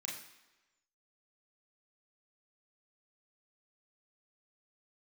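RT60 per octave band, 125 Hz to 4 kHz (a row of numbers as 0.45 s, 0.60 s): 0.85 s, 1.0 s, 1.1 s, 1.1 s, 1.1 s, 1.0 s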